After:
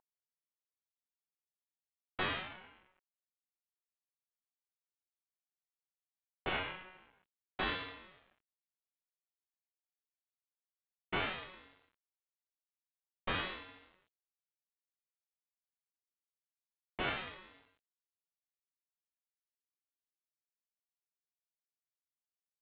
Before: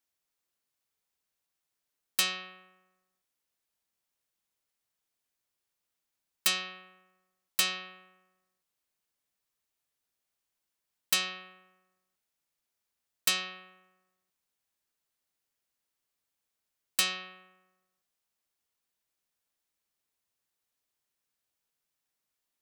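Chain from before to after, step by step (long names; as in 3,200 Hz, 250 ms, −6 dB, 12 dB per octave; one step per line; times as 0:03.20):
variable-slope delta modulation 16 kbit/s
ring modulator whose carrier an LFO sweeps 510 Hz, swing 65%, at 0.51 Hz
level +4.5 dB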